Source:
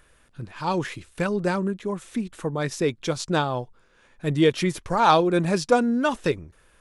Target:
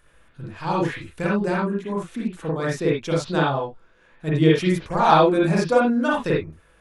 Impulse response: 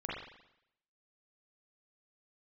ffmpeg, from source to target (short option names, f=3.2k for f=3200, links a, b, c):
-filter_complex "[0:a]asettb=1/sr,asplit=3[a][b][c];[a]atrim=end=3.424[d];[b]atrim=start=3.42:end=4.58,asetpts=PTS-STARTPTS,afade=t=in:d=0.004:c=qsin,afade=t=out:st=1.156:d=0.004:c=qsin,highshelf=f=9.8k:g=-7.5[e];[c]atrim=start=4.576[f];[d][e]acrossfade=d=0.004:c1=hsin:c2=qsin[g];[g][f]acrossfade=d=0.004:c1=qsin:c2=hsin[h];[1:a]atrim=start_sample=2205,atrim=end_sample=4410[i];[h][i]afir=irnorm=-1:irlink=0"